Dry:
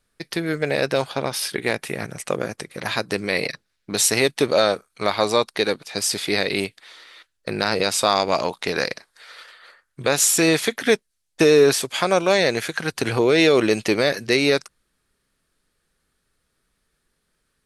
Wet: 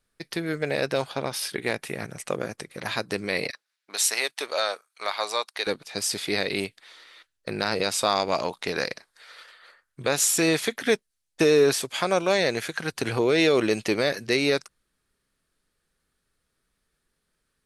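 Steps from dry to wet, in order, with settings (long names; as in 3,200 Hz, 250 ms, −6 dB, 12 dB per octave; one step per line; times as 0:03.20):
0:03.50–0:05.67: high-pass filter 760 Hz 12 dB per octave
level −4.5 dB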